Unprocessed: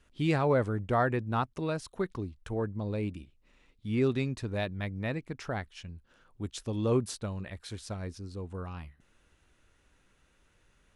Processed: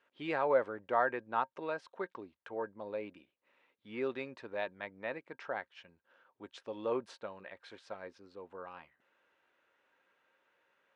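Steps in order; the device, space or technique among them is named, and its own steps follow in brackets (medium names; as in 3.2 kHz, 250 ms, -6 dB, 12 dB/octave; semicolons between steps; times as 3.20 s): tin-can telephone (band-pass 490–2600 Hz; small resonant body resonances 540/920/1600 Hz, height 7 dB, ringing for 80 ms); trim -2 dB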